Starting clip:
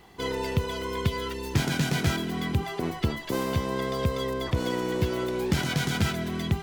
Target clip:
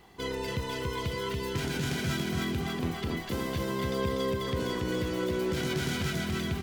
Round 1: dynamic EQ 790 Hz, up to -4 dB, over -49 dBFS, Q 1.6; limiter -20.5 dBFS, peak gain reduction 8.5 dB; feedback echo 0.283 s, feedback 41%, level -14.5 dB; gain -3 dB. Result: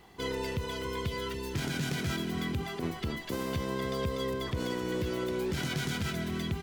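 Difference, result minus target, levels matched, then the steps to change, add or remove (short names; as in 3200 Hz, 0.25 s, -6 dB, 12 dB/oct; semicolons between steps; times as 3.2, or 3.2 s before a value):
echo-to-direct -12 dB
change: feedback echo 0.283 s, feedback 41%, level -2.5 dB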